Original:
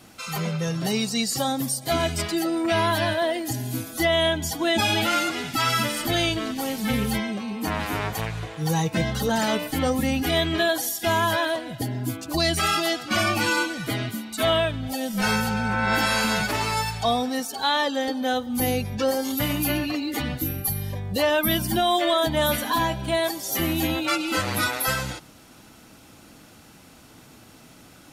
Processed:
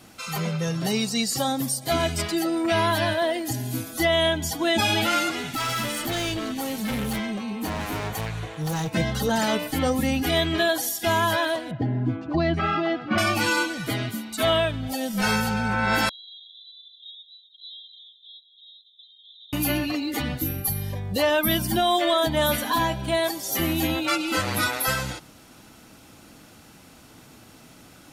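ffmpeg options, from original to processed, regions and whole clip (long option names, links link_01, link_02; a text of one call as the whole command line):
ffmpeg -i in.wav -filter_complex "[0:a]asettb=1/sr,asplit=3[link_01][link_02][link_03];[link_01]atrim=end=5.364[link_04];[link_02]atrim=start=5.36:end=8.91,asetpts=PTS-STARTPTS,afade=type=in:duration=0.004:curve=qsin,afade=type=out:start_time=3.546:duration=0.004:curve=qsin,bandreject=frequency=5000:width=9.8,asoftclip=type=hard:threshold=-24.5dB[link_05];[link_03]atrim=start=8.906[link_06];[link_04][link_05]acrossfade=duration=0.004:curve1=hsin:curve2=qsin[link_07];[link_07][link_06]acrossfade=duration=0.004:curve1=qsin:curve2=hsin,asettb=1/sr,asplit=3[link_08][link_09][link_10];[link_08]atrim=end=11.714[link_11];[link_09]atrim=start=11.71:end=13.18,asetpts=PTS-STARTPTS,afade=type=in:duration=0.004:curve=qsin,afade=type=out:start_time=1.466:duration=0.004:curve=qsin,highpass=150,lowpass=2300,aemphasis=mode=reproduction:type=bsi[link_12];[link_10]atrim=start=13.176[link_13];[link_11][link_12]acrossfade=duration=0.004:curve1=hsin:curve2=qsin[link_14];[link_14][link_13]acrossfade=duration=0.004:curve1=qsin:curve2=hsin,asettb=1/sr,asplit=3[link_15][link_16][link_17];[link_15]atrim=end=16.094[link_18];[link_16]atrim=start=16.09:end=19.53,asetpts=PTS-STARTPTS,afade=type=in:duration=0.004:curve=qsin,afade=type=out:start_time=3.436:duration=0.004:curve=qsin,asuperpass=centerf=3600:order=20:qfactor=4.7,acompressor=threshold=-48dB:ratio=2:attack=3.2:release=140:knee=1:detection=peak[link_19];[link_17]atrim=start=19.526[link_20];[link_18][link_19]acrossfade=duration=0.004:curve1=hsin:curve2=qsin[link_21];[link_21][link_20]acrossfade=duration=0.004:curve1=qsin:curve2=hsin" out.wav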